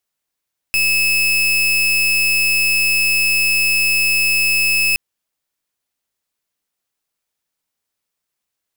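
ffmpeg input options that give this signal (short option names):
-f lavfi -i "aevalsrc='0.168*(2*lt(mod(2600*t,1),0.37)-1)':d=4.22:s=44100"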